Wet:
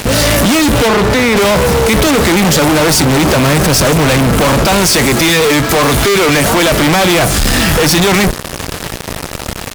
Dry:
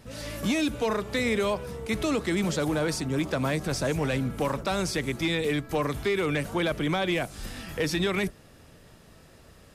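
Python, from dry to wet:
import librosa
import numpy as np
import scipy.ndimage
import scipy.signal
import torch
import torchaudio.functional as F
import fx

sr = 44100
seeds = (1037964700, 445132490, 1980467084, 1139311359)

y = fx.low_shelf(x, sr, hz=280.0, db=-8.0, at=(4.82, 6.81))
y = fx.fuzz(y, sr, gain_db=54.0, gate_db=-49.0)
y = fx.high_shelf(y, sr, hz=fx.line((0.87, 7600.0), (1.35, 5000.0)), db=-9.5, at=(0.87, 1.35), fade=0.02)
y = y * librosa.db_to_amplitude(4.5)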